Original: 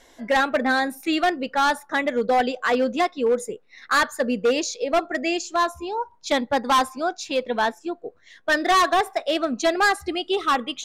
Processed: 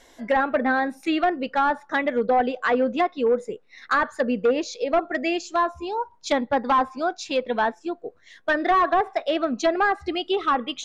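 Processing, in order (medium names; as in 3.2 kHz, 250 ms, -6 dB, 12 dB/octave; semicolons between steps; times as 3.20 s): low-pass that closes with the level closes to 1.5 kHz, closed at -16 dBFS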